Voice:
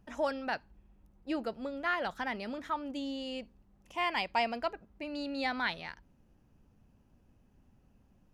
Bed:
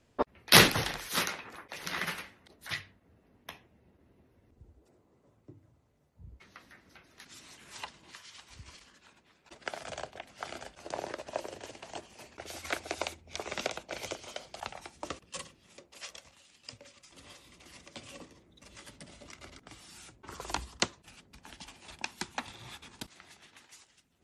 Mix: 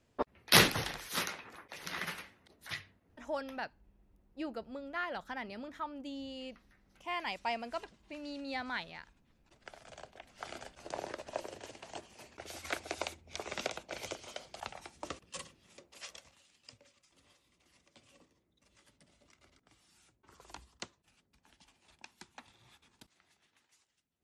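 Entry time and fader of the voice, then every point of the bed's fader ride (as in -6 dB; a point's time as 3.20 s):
3.10 s, -5.5 dB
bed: 2.97 s -4.5 dB
3.75 s -13 dB
9.81 s -13 dB
10.52 s -3 dB
16.16 s -3 dB
17.38 s -15.5 dB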